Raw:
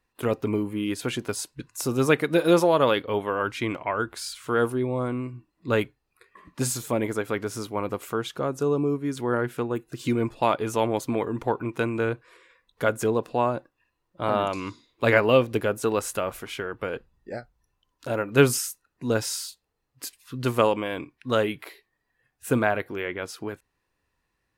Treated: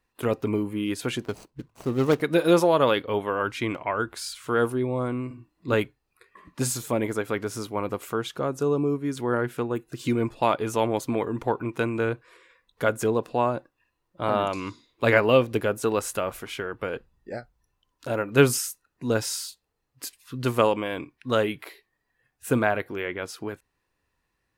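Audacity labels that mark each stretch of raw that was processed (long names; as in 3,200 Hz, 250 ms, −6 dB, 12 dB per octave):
1.250000	2.210000	running median over 25 samples
5.270000	5.740000	double-tracking delay 36 ms −3.5 dB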